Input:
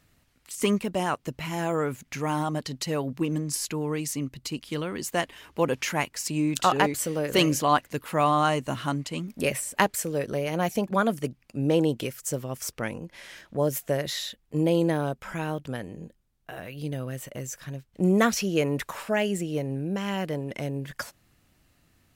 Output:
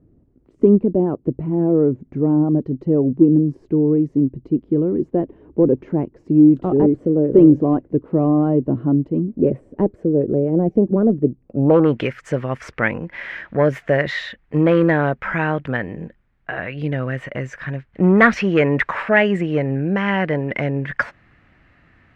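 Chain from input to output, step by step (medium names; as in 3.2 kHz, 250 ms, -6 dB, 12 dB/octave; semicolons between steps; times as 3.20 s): Chebyshev shaper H 5 -13 dB, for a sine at -6.5 dBFS; low-pass sweep 360 Hz -> 1.9 kHz, 11.39–11.96 s; trim +3 dB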